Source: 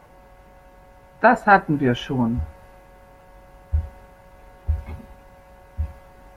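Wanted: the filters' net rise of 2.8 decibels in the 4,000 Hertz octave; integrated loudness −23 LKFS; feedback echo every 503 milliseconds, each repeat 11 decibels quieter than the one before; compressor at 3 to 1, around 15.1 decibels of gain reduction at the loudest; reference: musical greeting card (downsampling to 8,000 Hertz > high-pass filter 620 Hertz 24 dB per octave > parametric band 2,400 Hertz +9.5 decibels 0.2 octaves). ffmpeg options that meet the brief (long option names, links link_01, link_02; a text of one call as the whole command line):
ffmpeg -i in.wav -af "equalizer=frequency=4000:width_type=o:gain=3,acompressor=threshold=-30dB:ratio=3,aecho=1:1:503|1006|1509:0.282|0.0789|0.0221,aresample=8000,aresample=44100,highpass=frequency=620:width=0.5412,highpass=frequency=620:width=1.3066,equalizer=frequency=2400:width_type=o:width=0.2:gain=9.5,volume=12.5dB" out.wav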